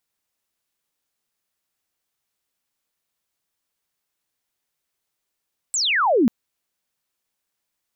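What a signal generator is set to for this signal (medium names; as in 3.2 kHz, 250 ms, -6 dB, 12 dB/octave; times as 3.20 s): sweep logarithmic 8.2 kHz -> 210 Hz -19.5 dBFS -> -12.5 dBFS 0.54 s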